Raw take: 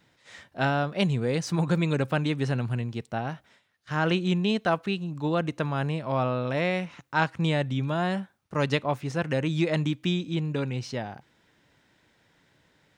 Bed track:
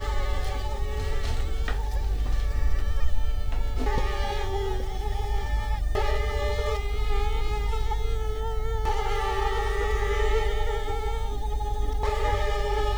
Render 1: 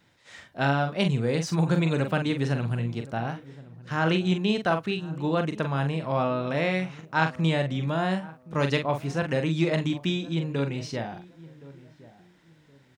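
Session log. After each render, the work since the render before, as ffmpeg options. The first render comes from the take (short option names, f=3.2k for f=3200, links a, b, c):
-filter_complex "[0:a]asplit=2[a][b];[b]adelay=43,volume=-7dB[c];[a][c]amix=inputs=2:normalize=0,asplit=2[d][e];[e]adelay=1069,lowpass=f=910:p=1,volume=-18.5dB,asplit=2[f][g];[g]adelay=1069,lowpass=f=910:p=1,volume=0.29[h];[d][f][h]amix=inputs=3:normalize=0"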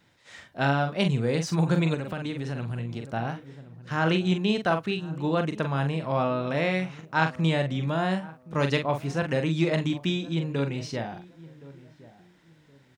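-filter_complex "[0:a]asettb=1/sr,asplit=3[a][b][c];[a]atrim=end=1.944[d];[b]atrim=start=1.94:end=3.11,asetpts=PTS-STARTPTS,afade=t=in:d=0.004:c=qsin,afade=t=out:st=1.166:d=0.004:c=qsin,acompressor=threshold=-28dB:ratio=6:attack=3.2:release=140:knee=1:detection=peak[e];[c]atrim=start=3.106[f];[d][e]acrossfade=d=0.004:c1=hsin:c2=qsin[g];[g][f]acrossfade=d=0.004:c1=qsin:c2=hsin"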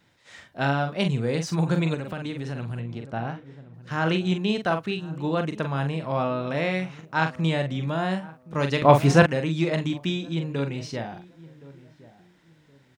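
-filter_complex "[0:a]asettb=1/sr,asplit=3[a][b][c];[a]atrim=end=2.804[d];[b]atrim=start=2.8:end=3.74,asetpts=PTS-STARTPTS,afade=t=in:d=0.004:c=qsin,afade=t=out:st=0.936:d=0.004:c=qsin,lowpass=f=3.3k:p=1[e];[c]atrim=start=3.736[f];[d][e]acrossfade=d=0.004:c1=hsin:c2=qsin[g];[g][f]acrossfade=d=0.004:c1=qsin:c2=hsin,asplit=3[h][i][j];[h]atrim=end=8.822[k];[i]atrim=start=8.818:end=9.262,asetpts=PTS-STARTPTS,volume=12dB[l];[j]atrim=start=9.258[m];[k][l]acrossfade=d=0.004:c1=hsin:c2=hsin[n];[n][m]acrossfade=d=0.004:c1=hsin:c2=hsin"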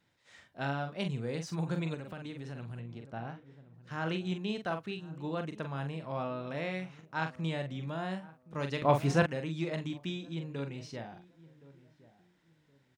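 -af "volume=-10.5dB"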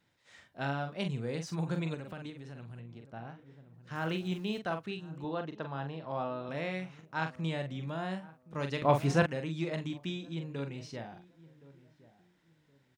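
-filter_complex "[0:a]asettb=1/sr,asplit=3[a][b][c];[a]atrim=end=3.954[d];[b]atrim=start=3.95:end=4.59,asetpts=PTS-STARTPTS,afade=t=in:d=0.004:c=qsin,afade=t=out:st=0.636:d=0.004:c=qsin,aeval=exprs='val(0)*gte(abs(val(0)),0.00266)':c=same[e];[c]atrim=start=4.586[f];[d][e]acrossfade=d=0.004:c1=hsin:c2=qsin[g];[g][f]acrossfade=d=0.004:c1=qsin:c2=hsin,asettb=1/sr,asplit=3[h][i][j];[h]atrim=end=5.244[k];[i]atrim=start=5.24:end=6.49,asetpts=PTS-STARTPTS,afade=t=in:d=0.004:c=qsin,afade=t=out:st=1.246:d=0.004:c=qsin,highpass=120,equalizer=f=190:t=q:w=4:g=-7,equalizer=f=810:t=q:w=4:g=4,equalizer=f=2.3k:t=q:w=4:g=-7,lowpass=f=5k:w=0.5412,lowpass=f=5k:w=1.3066[l];[j]atrim=start=6.486[m];[k][l]acrossfade=d=0.004:c1=hsin:c2=qsin[n];[n][m]acrossfade=d=0.004:c1=qsin:c2=hsin,asplit=3[o][p][q];[o]atrim=end=2.302[r];[p]atrim=start=2.298:end=3.392,asetpts=PTS-STARTPTS,volume=-4dB[s];[q]atrim=start=3.388[t];[r][s]acrossfade=d=0.004:c1=hsin:c2=hsin[u];[u][t]acrossfade=d=0.004:c1=hsin:c2=hsin"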